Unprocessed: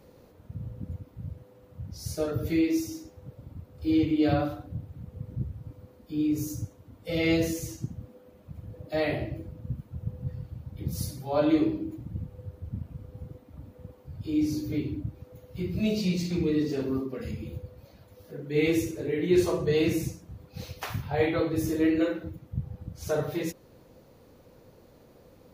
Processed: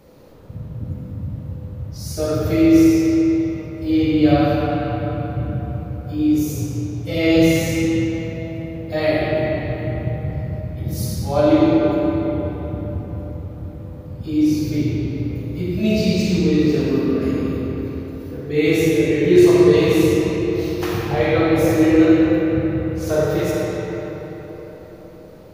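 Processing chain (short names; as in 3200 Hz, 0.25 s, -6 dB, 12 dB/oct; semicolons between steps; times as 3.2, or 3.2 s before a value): digital reverb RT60 4.4 s, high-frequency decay 0.6×, pre-delay 5 ms, DRR -5 dB; gain +5 dB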